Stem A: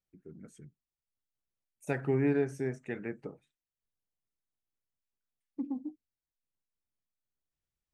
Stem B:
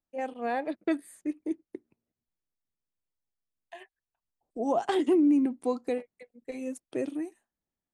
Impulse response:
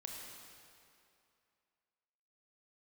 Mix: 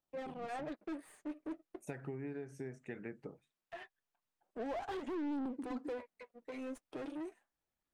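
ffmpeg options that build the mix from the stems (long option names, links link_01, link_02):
-filter_complex "[0:a]acompressor=threshold=-35dB:ratio=12,volume=-4.5dB[link_01];[1:a]aeval=exprs='if(lt(val(0),0),0.251*val(0),val(0))':channel_layout=same,asplit=2[link_02][link_03];[link_03]highpass=frequency=720:poles=1,volume=32dB,asoftclip=type=tanh:threshold=-15.5dB[link_04];[link_02][link_04]amix=inputs=2:normalize=0,lowpass=frequency=1500:poles=1,volume=-6dB,flanger=delay=0.2:depth=6.9:regen=-37:speed=0.37:shape=sinusoidal,volume=-13.5dB[link_05];[link_01][link_05]amix=inputs=2:normalize=0"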